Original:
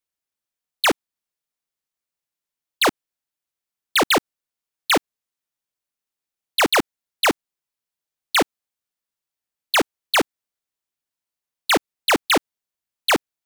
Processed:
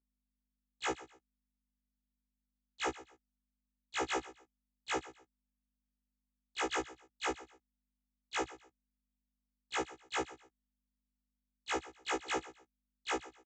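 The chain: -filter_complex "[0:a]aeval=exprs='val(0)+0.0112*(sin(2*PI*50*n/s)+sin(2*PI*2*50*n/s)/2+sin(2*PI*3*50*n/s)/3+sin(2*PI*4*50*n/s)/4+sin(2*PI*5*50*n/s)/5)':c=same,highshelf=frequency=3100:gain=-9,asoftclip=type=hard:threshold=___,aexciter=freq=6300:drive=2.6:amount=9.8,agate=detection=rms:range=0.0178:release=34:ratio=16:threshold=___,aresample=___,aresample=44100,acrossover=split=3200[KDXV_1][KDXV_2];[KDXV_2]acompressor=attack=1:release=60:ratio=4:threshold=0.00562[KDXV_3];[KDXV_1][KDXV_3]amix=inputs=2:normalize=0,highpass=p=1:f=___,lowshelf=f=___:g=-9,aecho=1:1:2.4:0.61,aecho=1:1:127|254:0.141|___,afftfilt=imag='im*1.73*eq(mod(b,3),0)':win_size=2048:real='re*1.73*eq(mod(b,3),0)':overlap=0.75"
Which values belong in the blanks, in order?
0.0282, 0.0158, 16000, 40, 120, 0.0367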